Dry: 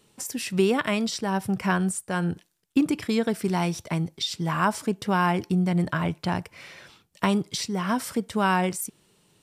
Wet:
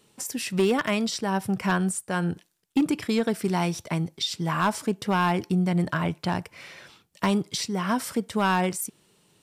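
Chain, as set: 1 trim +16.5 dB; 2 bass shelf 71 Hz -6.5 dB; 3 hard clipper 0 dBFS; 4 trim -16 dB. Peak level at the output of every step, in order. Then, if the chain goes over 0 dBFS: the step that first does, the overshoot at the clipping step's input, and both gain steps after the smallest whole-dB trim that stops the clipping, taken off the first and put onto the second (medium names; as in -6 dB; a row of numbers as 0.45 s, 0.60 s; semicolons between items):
+7.5 dBFS, +8.0 dBFS, 0.0 dBFS, -16.0 dBFS; step 1, 8.0 dB; step 1 +8.5 dB, step 4 -8 dB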